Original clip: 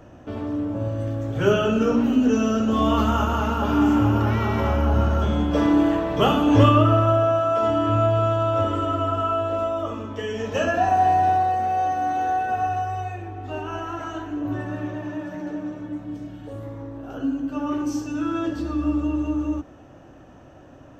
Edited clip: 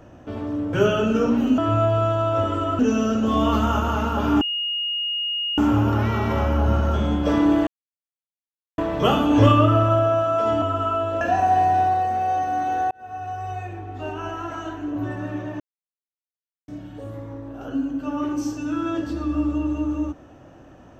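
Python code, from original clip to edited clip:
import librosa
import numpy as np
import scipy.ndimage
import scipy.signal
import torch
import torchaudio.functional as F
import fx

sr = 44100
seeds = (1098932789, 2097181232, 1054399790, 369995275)

y = fx.edit(x, sr, fx.cut(start_s=0.73, length_s=0.66),
    fx.insert_tone(at_s=3.86, length_s=1.17, hz=2860.0, db=-22.5),
    fx.insert_silence(at_s=5.95, length_s=1.11),
    fx.move(start_s=7.79, length_s=1.21, to_s=2.24),
    fx.cut(start_s=9.59, length_s=1.11),
    fx.fade_in_span(start_s=12.4, length_s=0.72),
    fx.silence(start_s=15.09, length_s=1.08), tone=tone)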